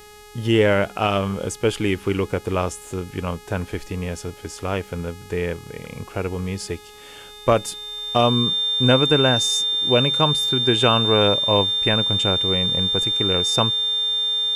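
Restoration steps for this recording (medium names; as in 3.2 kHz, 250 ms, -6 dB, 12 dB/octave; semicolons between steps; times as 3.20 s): de-hum 418.4 Hz, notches 33; band-stop 3.6 kHz, Q 30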